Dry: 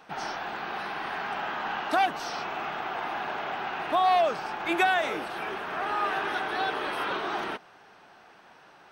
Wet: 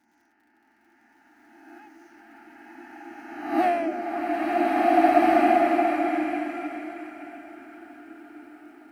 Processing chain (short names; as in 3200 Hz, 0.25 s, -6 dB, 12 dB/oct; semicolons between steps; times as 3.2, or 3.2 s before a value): spectral swells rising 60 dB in 1.65 s; Doppler pass-by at 3.64, 30 m/s, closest 1.6 m; HPF 120 Hz 6 dB/oct; resonant low shelf 390 Hz +7 dB, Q 3; fixed phaser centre 720 Hz, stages 8; crackle 62/s -60 dBFS; bell 6600 Hz -3.5 dB 0.77 oct; notch comb 190 Hz; delay with a stepping band-pass 0.285 s, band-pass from 400 Hz, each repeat 1.4 oct, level -3.5 dB; bloom reverb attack 1.75 s, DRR -8.5 dB; gain +5.5 dB